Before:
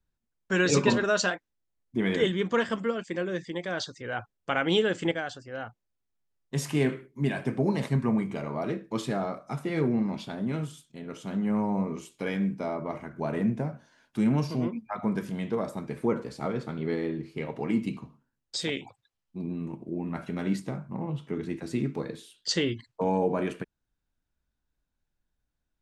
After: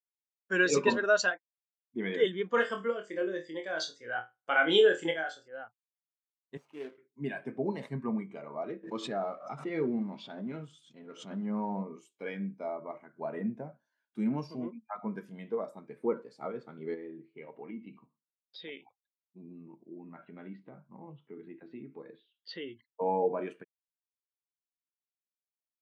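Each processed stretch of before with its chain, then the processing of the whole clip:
2.54–5.48 s: treble shelf 8.7 kHz +12 dB + flutter echo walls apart 4.3 m, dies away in 0.31 s
6.57–6.98 s: median filter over 25 samples + high-pass 820 Hz 6 dB/octave
8.83–11.83 s: companding laws mixed up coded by mu + low-pass 6.8 kHz + swell ahead of each attack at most 87 dB/s
16.94–22.87 s: low-pass 3.6 kHz 24 dB/octave + compression 2:1, threshold -32 dBFS
whole clip: high-pass 550 Hz 6 dB/octave; spectral contrast expander 1.5:1

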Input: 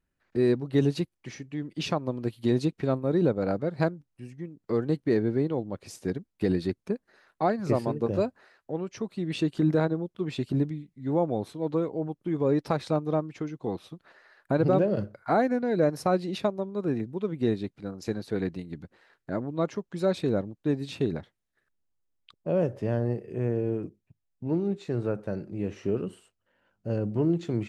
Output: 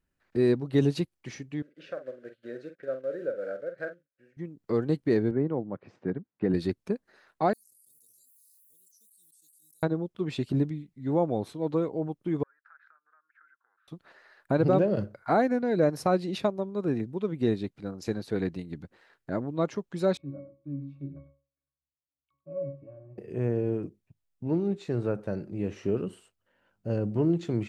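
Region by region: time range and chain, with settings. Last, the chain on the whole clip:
1.62–4.37 s: block-companded coder 5-bit + two resonant band-passes 920 Hz, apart 1.5 oct + doubling 46 ms -9 dB
5.31–6.54 s: Chebyshev band-pass 140–1600 Hz + distance through air 67 m
7.53–9.83 s: inverse Chebyshev high-pass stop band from 2.3 kHz, stop band 80 dB + level flattener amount 100%
12.43–13.88 s: compression 12:1, threshold -32 dBFS + Butterworth band-pass 1.5 kHz, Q 4.6
20.17–23.18 s: pitch-class resonator C#, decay 0.36 s + delay 99 ms -13.5 dB
whole clip: none

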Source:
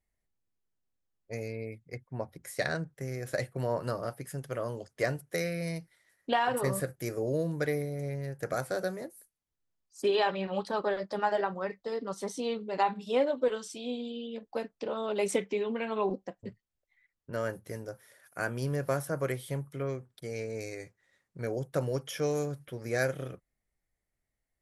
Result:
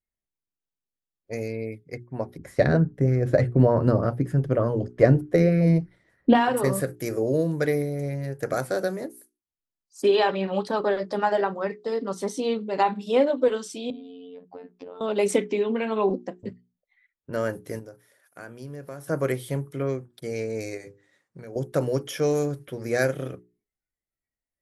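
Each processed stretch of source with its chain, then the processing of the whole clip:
2.38–6.35 s: RIAA curve playback + sweeping bell 3.3 Hz 240–1600 Hz +7 dB
13.90–15.01 s: compression 10:1, threshold -41 dBFS + low-pass 1.7 kHz 6 dB/octave + robot voice 89.1 Hz
17.79–19.08 s: gate -49 dBFS, range -8 dB + compression 2:1, threshold -53 dBFS
20.77–21.56 s: peaking EQ 280 Hz -4 dB 0.31 oct + hum notches 50/100/150/200/250/300/350/400/450/500 Hz + compression, threshold -43 dBFS
whole clip: hum notches 60/120/180/240/300/360/420 Hz; spectral noise reduction 15 dB; peaking EQ 290 Hz +5 dB 1.4 oct; trim +4.5 dB

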